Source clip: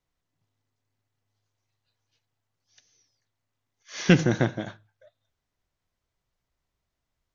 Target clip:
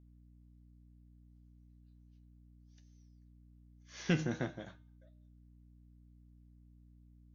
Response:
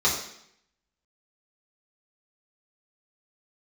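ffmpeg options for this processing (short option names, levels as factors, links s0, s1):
-af "bandreject=f=305.1:t=h:w=4,bandreject=f=610.2:t=h:w=4,bandreject=f=915.3:t=h:w=4,bandreject=f=1220.4:t=h:w=4,bandreject=f=1525.5:t=h:w=4,bandreject=f=1830.6:t=h:w=4,bandreject=f=2135.7:t=h:w=4,bandreject=f=2440.8:t=h:w=4,bandreject=f=2745.9:t=h:w=4,bandreject=f=3051:t=h:w=4,bandreject=f=3356.1:t=h:w=4,bandreject=f=3661.2:t=h:w=4,bandreject=f=3966.3:t=h:w=4,bandreject=f=4271.4:t=h:w=4,bandreject=f=4576.5:t=h:w=4,bandreject=f=4881.6:t=h:w=4,bandreject=f=5186.7:t=h:w=4,bandreject=f=5491.8:t=h:w=4,bandreject=f=5796.9:t=h:w=4,bandreject=f=6102:t=h:w=4,bandreject=f=6407.1:t=h:w=4,bandreject=f=6712.2:t=h:w=4,bandreject=f=7017.3:t=h:w=4,bandreject=f=7322.4:t=h:w=4,bandreject=f=7627.5:t=h:w=4,bandreject=f=7932.6:t=h:w=4,bandreject=f=8237.7:t=h:w=4,bandreject=f=8542.8:t=h:w=4,bandreject=f=8847.9:t=h:w=4,bandreject=f=9153:t=h:w=4,bandreject=f=9458.1:t=h:w=4,bandreject=f=9763.2:t=h:w=4,bandreject=f=10068.3:t=h:w=4,bandreject=f=10373.4:t=h:w=4,bandreject=f=10678.5:t=h:w=4,bandreject=f=10983.6:t=h:w=4,flanger=delay=9.2:depth=3.7:regen=59:speed=0.59:shape=triangular,aeval=exprs='val(0)+0.00316*(sin(2*PI*60*n/s)+sin(2*PI*2*60*n/s)/2+sin(2*PI*3*60*n/s)/3+sin(2*PI*4*60*n/s)/4+sin(2*PI*5*60*n/s)/5)':c=same,volume=0.355"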